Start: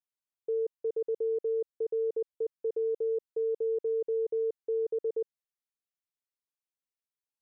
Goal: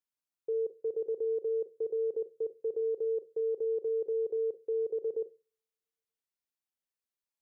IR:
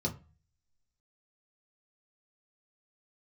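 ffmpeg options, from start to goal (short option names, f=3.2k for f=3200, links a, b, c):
-filter_complex "[0:a]asplit=2[a][b];[b]highpass=250[c];[1:a]atrim=start_sample=2205,adelay=33[d];[c][d]afir=irnorm=-1:irlink=0,volume=-19.5dB[e];[a][e]amix=inputs=2:normalize=0,volume=-1.5dB"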